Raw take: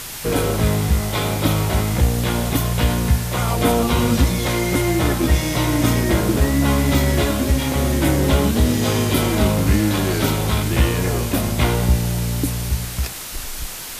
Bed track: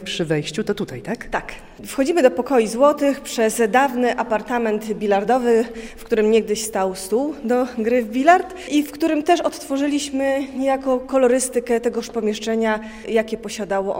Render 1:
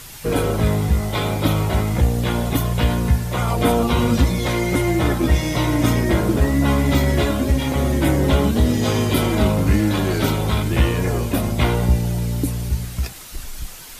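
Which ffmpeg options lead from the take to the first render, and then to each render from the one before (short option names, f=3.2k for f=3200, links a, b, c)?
-af "afftdn=nr=8:nf=-31"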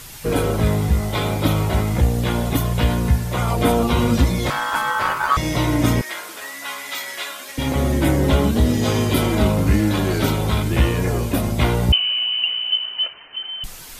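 -filter_complex "[0:a]asettb=1/sr,asplit=3[a][b][c];[a]atrim=end=4.504[d];[b]atrim=start=4.5:end=5.37,asetpts=PTS-STARTPTS,afade=t=in:d=0.004:c=qsin,afade=t=out:st=0.866:d=0.004:c=qsin,aeval=exprs='val(0)*sin(2*PI*1200*n/s)':c=same[e];[c]atrim=start=5.366[f];[d][e]acrossfade=d=0.004:c1=hsin:c2=qsin[g];[g][f]acrossfade=d=0.004:c1=qsin:c2=hsin,asettb=1/sr,asplit=3[h][i][j];[h]atrim=end=6.014[k];[i]atrim=start=6.01:end=7.58,asetpts=PTS-STARTPTS,afade=t=in:d=0.004:c=qsin,afade=t=out:st=1.566:d=0.004:c=qsin,highpass=1.4k[l];[j]atrim=start=7.576[m];[k][l]acrossfade=d=0.004:c1=hsin:c2=qsin[n];[n][m]acrossfade=d=0.004:c1=qsin:c2=hsin,asettb=1/sr,asplit=3[o][p][q];[o]atrim=end=11.924[r];[p]atrim=start=11.92:end=13.64,asetpts=PTS-STARTPTS,afade=t=in:d=0.004:c=qsin,afade=t=out:st=1.716:d=0.004:c=qsin,lowpass=f=2.6k:t=q:w=0.5098,lowpass=f=2.6k:t=q:w=0.6013,lowpass=f=2.6k:t=q:w=0.9,lowpass=f=2.6k:t=q:w=2.563,afreqshift=-3100[s];[q]atrim=start=13.636[t];[r][s]acrossfade=d=0.004:c1=hsin:c2=qsin[u];[u][t]acrossfade=d=0.004:c1=qsin:c2=hsin"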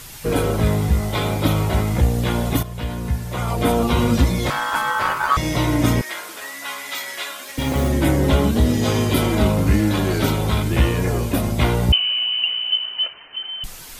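-filter_complex "[0:a]asettb=1/sr,asplit=3[a][b][c];[a]atrim=end=7.424[d];[b]atrim=start=7.42:end=7.89,asetpts=PTS-STARTPTS,afade=t=in:d=0.004:c=qsin,afade=t=out:st=0.466:d=0.004:c=qsin,acrusher=bits=5:mode=log:mix=0:aa=0.000001[e];[c]atrim=start=7.886[f];[d][e]acrossfade=d=0.004:c1=hsin:c2=qsin[g];[g][f]acrossfade=d=0.004:c1=qsin:c2=hsin,asplit=2[h][i];[h]atrim=end=2.63,asetpts=PTS-STARTPTS,afade=t=out:st=2.626:d=0.004:c=hsin:silence=0.251189[j];[i]atrim=start=2.63,asetpts=PTS-STARTPTS,afade=t=in:d=1.28:silence=0.251189[k];[j][k]concat=n=2:v=0:a=1"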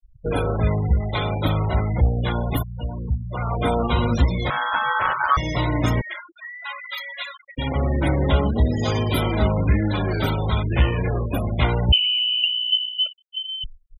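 -af "afftfilt=real='re*gte(hypot(re,im),0.0708)':imag='im*gte(hypot(re,im),0.0708)':win_size=1024:overlap=0.75,equalizer=f=270:w=0.83:g=-6"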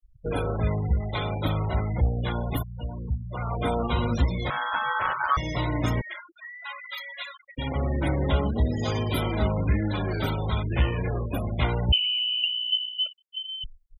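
-af "volume=-5dB"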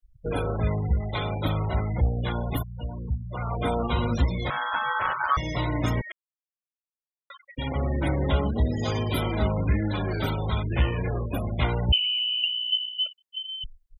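-filter_complex "[0:a]asplit=3[a][b][c];[a]atrim=end=6.12,asetpts=PTS-STARTPTS,afade=t=out:st=6.116:d=0.004:c=hsin[d];[b]atrim=start=6.12:end=7.3,asetpts=PTS-STARTPTS,volume=0[e];[c]atrim=start=7.3,asetpts=PTS-STARTPTS,afade=t=in:d=0.004:c=hsin[f];[d][e][f]concat=n=3:v=0:a=1"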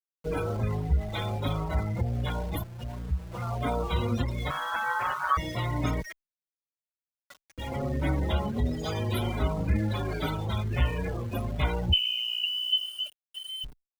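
-filter_complex "[0:a]aeval=exprs='val(0)*gte(abs(val(0)),0.0106)':c=same,asplit=2[a][b];[b]adelay=5.2,afreqshift=1.4[c];[a][c]amix=inputs=2:normalize=1"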